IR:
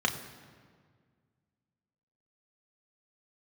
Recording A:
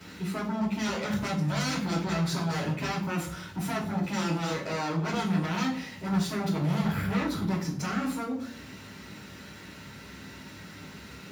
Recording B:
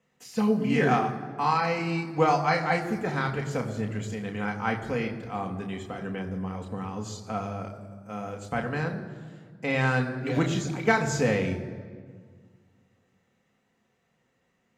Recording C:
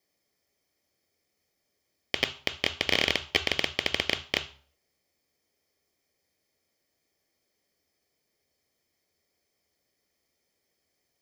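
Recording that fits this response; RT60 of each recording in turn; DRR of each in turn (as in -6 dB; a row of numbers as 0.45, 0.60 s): B; 0.65, 1.8, 0.45 s; -7.5, 2.0, 10.0 dB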